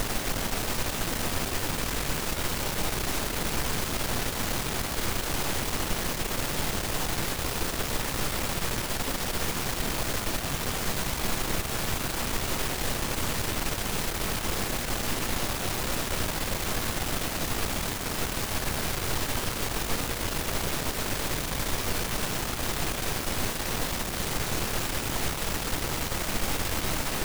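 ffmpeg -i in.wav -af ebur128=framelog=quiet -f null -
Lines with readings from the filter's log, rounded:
Integrated loudness:
  I:         -29.1 LUFS
  Threshold: -39.1 LUFS
Loudness range:
  LRA:         0.3 LU
  Threshold: -49.1 LUFS
  LRA low:   -29.3 LUFS
  LRA high:  -29.0 LUFS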